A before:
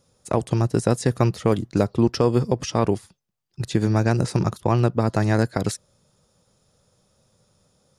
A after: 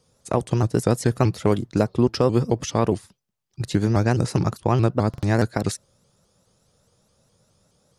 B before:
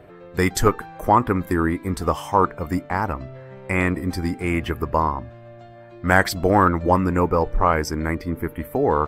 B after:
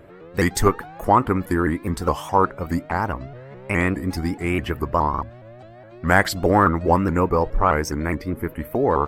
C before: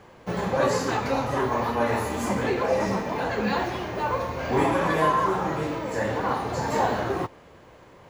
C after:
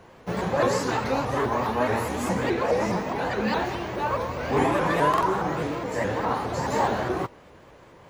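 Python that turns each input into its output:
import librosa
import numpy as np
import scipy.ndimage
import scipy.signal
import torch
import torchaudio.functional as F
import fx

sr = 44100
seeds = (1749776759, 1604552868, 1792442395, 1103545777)

y = fx.buffer_glitch(x, sr, at_s=(5.09,), block=2048, repeats=2)
y = fx.vibrato_shape(y, sr, shape='saw_up', rate_hz=4.8, depth_cents=160.0)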